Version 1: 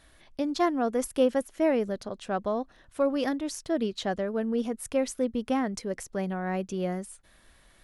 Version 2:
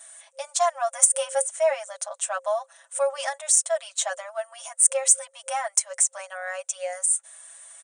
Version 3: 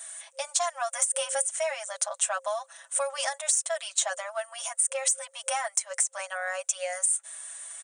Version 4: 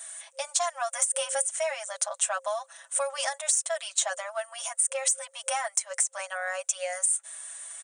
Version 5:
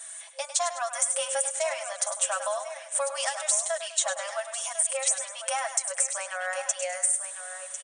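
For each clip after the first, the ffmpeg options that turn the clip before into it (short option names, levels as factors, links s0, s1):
-af "aecho=1:1:6:0.93,afftfilt=real='re*between(b*sr/4096,530,9600)':imag='im*between(b*sr/4096,530,9600)':win_size=4096:overlap=0.75,aexciter=amount=10:drive=8.5:freq=7000,volume=1.26"
-filter_complex "[0:a]alimiter=limit=0.211:level=0:latency=1:release=195,lowshelf=f=490:g=-10.5,acrossover=split=1400|4100[s0][s1][s2];[s0]acompressor=threshold=0.0178:ratio=4[s3];[s1]acompressor=threshold=0.00891:ratio=4[s4];[s2]acompressor=threshold=0.0398:ratio=4[s5];[s3][s4][s5]amix=inputs=3:normalize=0,volume=1.78"
-af anull
-filter_complex "[0:a]asplit=2[s0][s1];[s1]aecho=0:1:102|204|306|408:0.299|0.122|0.0502|0.0206[s2];[s0][s2]amix=inputs=2:normalize=0,aresample=22050,aresample=44100,asplit=2[s3][s4];[s4]aecho=0:1:1049:0.282[s5];[s3][s5]amix=inputs=2:normalize=0"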